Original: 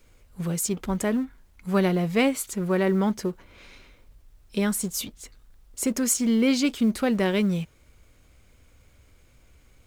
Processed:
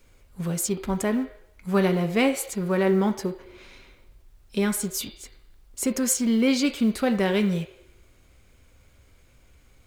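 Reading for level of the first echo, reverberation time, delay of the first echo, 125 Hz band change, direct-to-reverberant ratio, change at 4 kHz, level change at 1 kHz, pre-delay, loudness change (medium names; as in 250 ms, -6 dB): no echo, 0.85 s, no echo, 0.0 dB, 11.0 dB, +0.5 dB, +1.0 dB, 7 ms, +0.5 dB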